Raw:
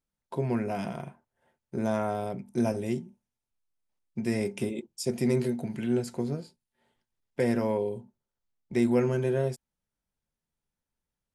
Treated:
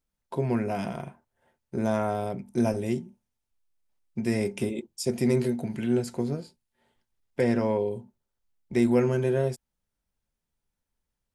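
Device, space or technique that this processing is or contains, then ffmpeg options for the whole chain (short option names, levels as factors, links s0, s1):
low shelf boost with a cut just above: -filter_complex "[0:a]lowshelf=f=93:g=5.5,equalizer=f=150:t=o:w=0.82:g=-2.5,asettb=1/sr,asplit=3[s0][s1][s2];[s0]atrim=end=7.414[s3];[s1]atrim=start=7.41:end=7.91,asetpts=PTS-STARTPTS,afade=t=in:d=0.004:c=qsin,afade=t=out:st=0.496:d=0.004:c=qsin,lowpass=7100[s4];[s2]atrim=start=7.906[s5];[s3][s4]acrossfade=d=0.004:c1=hsin:c2=qsin[s6];[s6][s5]acrossfade=d=0.004:c1=qsin:c2=hsin,volume=1.26"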